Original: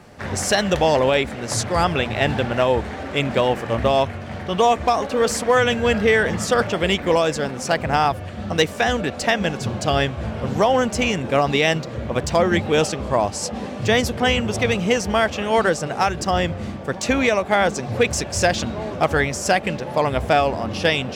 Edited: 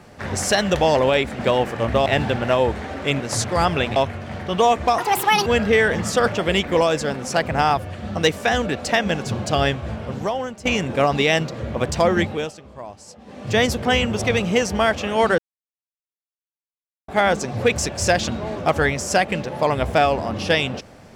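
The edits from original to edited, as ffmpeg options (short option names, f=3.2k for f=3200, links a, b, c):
-filter_complex "[0:a]asplit=12[a][b][c][d][e][f][g][h][i][j][k][l];[a]atrim=end=1.392[m];[b]atrim=start=3.288:end=3.962[n];[c]atrim=start=2.148:end=3.292[o];[d]atrim=start=1.388:end=2.152[p];[e]atrim=start=3.958:end=4.984[q];[f]atrim=start=4.98:end=5.81,asetpts=PTS-STARTPTS,asetrate=75852,aresample=44100[r];[g]atrim=start=5.806:end=11,asetpts=PTS-STARTPTS,afade=t=out:st=4.254:d=0.94:silence=0.133352[s];[h]atrim=start=11:end=12.86,asetpts=PTS-STARTPTS,afade=t=in:d=0.004:c=hsin:silence=0.133352,afade=t=out:st=1.52:d=0.34:silence=0.149624[t];[i]atrim=start=12.86:end=13.6,asetpts=PTS-STARTPTS,volume=-16.5dB[u];[j]atrim=start=13.6:end=15.73,asetpts=PTS-STARTPTS,afade=t=in:d=0.34:silence=0.149624,afade=t=out:st=2.126:d=0.004:c=hsin[v];[k]atrim=start=15.73:end=17.43,asetpts=PTS-STARTPTS,volume=0[w];[l]atrim=start=17.43,asetpts=PTS-STARTPTS,afade=t=in:d=0.004:c=hsin[x];[m][n]acrossfade=d=0.004:c1=hsin:c2=hsin[y];[y][o]acrossfade=d=0.004:c1=hsin:c2=hsin[z];[z][p]acrossfade=d=0.004:c1=hsin:c2=hsin[aa];[aa][q]acrossfade=d=0.004:c1=hsin:c2=hsin[ab];[ab][r]acrossfade=d=0.004:c1=hsin:c2=hsin[ac];[s][t][u][v][w][x]concat=n=6:v=0:a=1[ad];[ac][ad]acrossfade=d=0.004:c1=hsin:c2=hsin"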